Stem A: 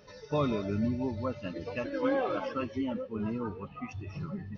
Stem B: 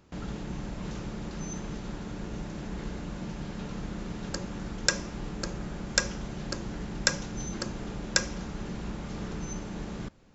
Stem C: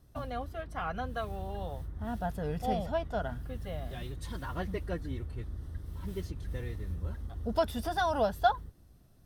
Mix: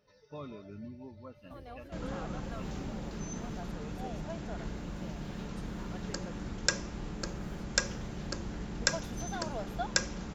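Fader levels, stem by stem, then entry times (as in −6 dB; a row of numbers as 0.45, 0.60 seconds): −15.0, −3.5, −11.5 decibels; 0.00, 1.80, 1.35 seconds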